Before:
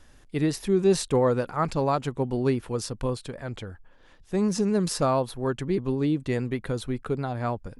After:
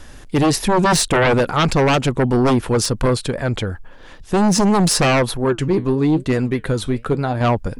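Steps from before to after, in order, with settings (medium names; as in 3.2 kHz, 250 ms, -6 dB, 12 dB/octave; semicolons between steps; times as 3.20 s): 5.37–7.41 s: flange 1 Hz, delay 2.9 ms, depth 7.9 ms, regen +77%; sine folder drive 11 dB, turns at -11 dBFS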